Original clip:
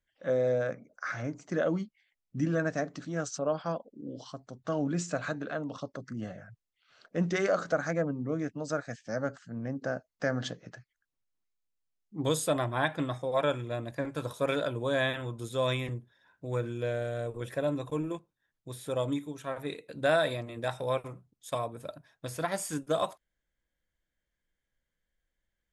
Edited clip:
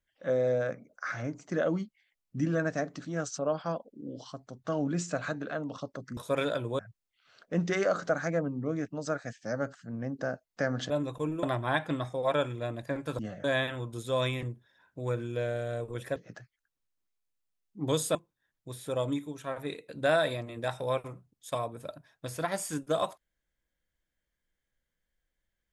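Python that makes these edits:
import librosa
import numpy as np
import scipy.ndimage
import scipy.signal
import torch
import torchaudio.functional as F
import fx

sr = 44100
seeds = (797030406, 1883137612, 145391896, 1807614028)

y = fx.edit(x, sr, fx.swap(start_s=6.17, length_s=0.25, other_s=14.28, other_length_s=0.62),
    fx.swap(start_s=10.53, length_s=1.99, other_s=17.62, other_length_s=0.53), tone=tone)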